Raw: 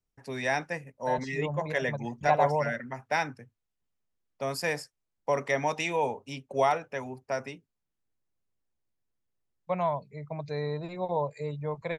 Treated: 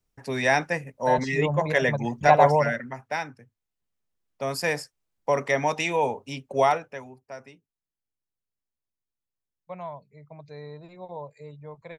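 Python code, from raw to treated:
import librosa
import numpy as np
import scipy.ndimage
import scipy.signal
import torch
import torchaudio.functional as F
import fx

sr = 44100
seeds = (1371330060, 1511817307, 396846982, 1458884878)

y = fx.gain(x, sr, db=fx.line((2.56, 7.0), (3.3, -3.5), (4.65, 4.0), (6.71, 4.0), (7.19, -8.5)))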